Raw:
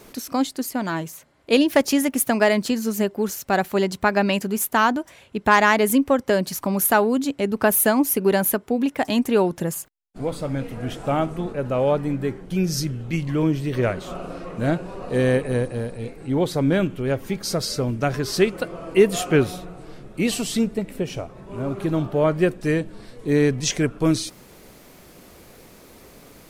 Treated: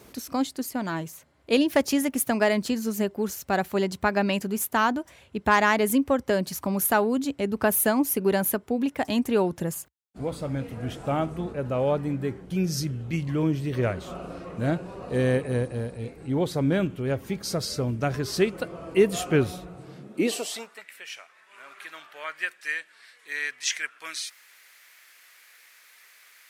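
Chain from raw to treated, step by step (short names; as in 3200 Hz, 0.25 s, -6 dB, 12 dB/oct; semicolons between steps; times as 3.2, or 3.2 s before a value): high-pass sweep 64 Hz -> 1800 Hz, 19.67–20.87; gain -4.5 dB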